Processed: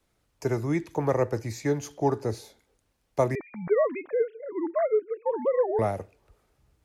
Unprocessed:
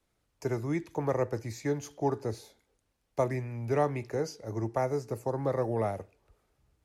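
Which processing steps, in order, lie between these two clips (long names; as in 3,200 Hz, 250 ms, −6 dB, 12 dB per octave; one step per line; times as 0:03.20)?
0:03.35–0:05.79: three sine waves on the formant tracks
level +4.5 dB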